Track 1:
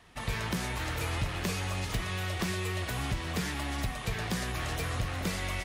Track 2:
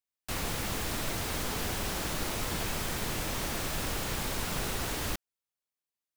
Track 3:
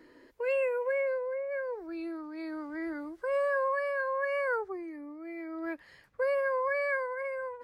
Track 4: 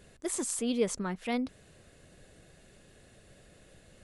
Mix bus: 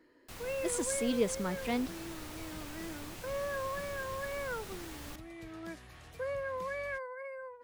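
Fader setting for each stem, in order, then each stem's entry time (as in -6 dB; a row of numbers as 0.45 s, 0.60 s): -19.5 dB, -13.5 dB, -8.0 dB, -1.5 dB; 1.35 s, 0.00 s, 0.00 s, 0.40 s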